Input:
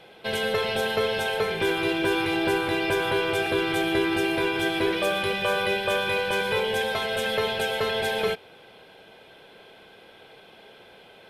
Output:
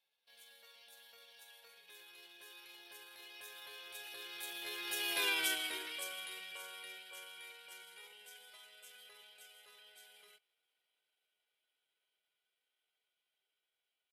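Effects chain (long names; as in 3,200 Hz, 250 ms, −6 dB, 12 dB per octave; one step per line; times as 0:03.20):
source passing by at 0:04.26, 19 m/s, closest 2.8 metres
tempo change 0.8×
first difference
level +6 dB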